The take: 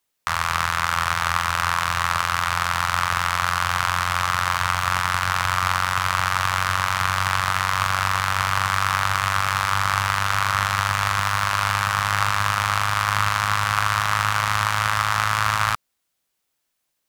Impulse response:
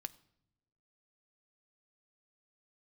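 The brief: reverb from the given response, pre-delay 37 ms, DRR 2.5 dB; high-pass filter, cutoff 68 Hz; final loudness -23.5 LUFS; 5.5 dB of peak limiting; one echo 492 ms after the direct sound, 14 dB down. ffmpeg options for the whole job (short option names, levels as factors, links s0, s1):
-filter_complex "[0:a]highpass=68,alimiter=limit=0.398:level=0:latency=1,aecho=1:1:492:0.2,asplit=2[s0][s1];[1:a]atrim=start_sample=2205,adelay=37[s2];[s1][s2]afir=irnorm=-1:irlink=0,volume=1.12[s3];[s0][s3]amix=inputs=2:normalize=0,volume=0.841"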